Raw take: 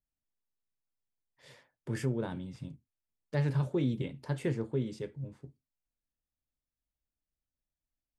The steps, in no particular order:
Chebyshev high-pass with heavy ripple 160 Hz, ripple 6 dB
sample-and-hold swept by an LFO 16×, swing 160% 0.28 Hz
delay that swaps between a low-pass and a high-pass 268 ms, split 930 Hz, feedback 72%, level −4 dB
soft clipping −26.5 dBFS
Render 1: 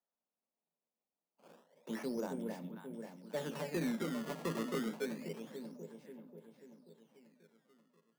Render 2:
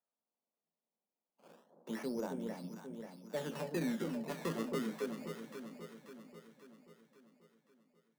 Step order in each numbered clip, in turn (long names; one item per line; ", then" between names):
delay that swaps between a low-pass and a high-pass, then sample-and-hold swept by an LFO, then Chebyshev high-pass with heavy ripple, then soft clipping
sample-and-hold swept by an LFO, then Chebyshev high-pass with heavy ripple, then soft clipping, then delay that swaps between a low-pass and a high-pass